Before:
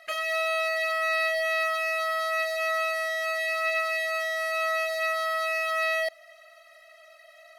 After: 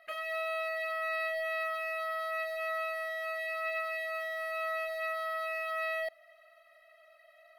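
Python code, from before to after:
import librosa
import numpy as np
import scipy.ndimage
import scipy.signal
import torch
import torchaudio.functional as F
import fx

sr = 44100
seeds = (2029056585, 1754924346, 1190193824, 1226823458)

y = fx.quant_dither(x, sr, seeds[0], bits=10, dither='none', at=(4.11, 4.75))
y = fx.peak_eq(y, sr, hz=6500.0, db=-14.5, octaves=1.2)
y = F.gain(torch.from_numpy(y), -6.5).numpy()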